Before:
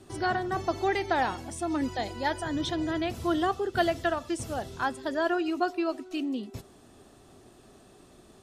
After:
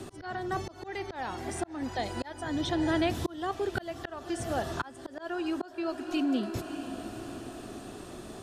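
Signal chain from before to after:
feedback delay with all-pass diffusion 585 ms, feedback 42%, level −15 dB
volume swells 740 ms
multiband upward and downward compressor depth 40%
level +5 dB

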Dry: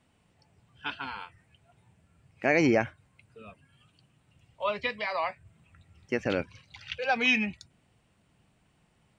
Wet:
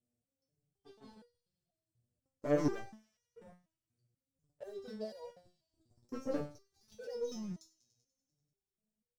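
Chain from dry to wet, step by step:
Chebyshev band-stop filter 570–5,500 Hz, order 3
four-comb reverb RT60 0.41 s, combs from 29 ms, DRR 17.5 dB
leveller curve on the samples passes 3
on a send: delay with a high-pass on its return 97 ms, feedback 70%, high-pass 3,600 Hz, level −17.5 dB
on the sum: step-sequenced resonator 4.1 Hz 120–480 Hz
level −1.5 dB

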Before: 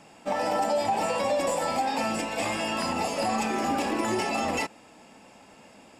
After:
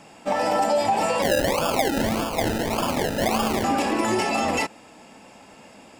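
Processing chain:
0:01.22–0:03.64: sample-and-hold swept by an LFO 31×, swing 60% 1.7 Hz
level +4.5 dB

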